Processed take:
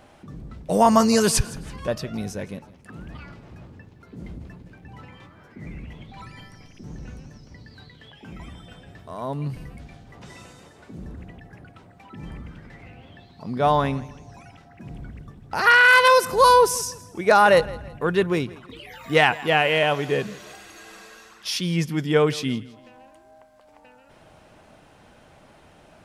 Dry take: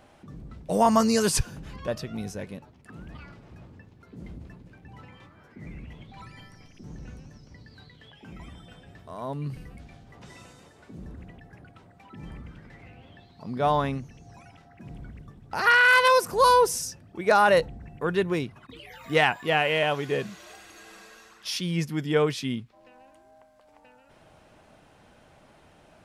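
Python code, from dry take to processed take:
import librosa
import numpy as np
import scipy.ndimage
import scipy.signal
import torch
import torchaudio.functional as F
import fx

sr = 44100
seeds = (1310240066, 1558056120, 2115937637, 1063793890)

y = fx.echo_feedback(x, sr, ms=165, feedback_pct=36, wet_db=-20.0)
y = y * librosa.db_to_amplitude(4.0)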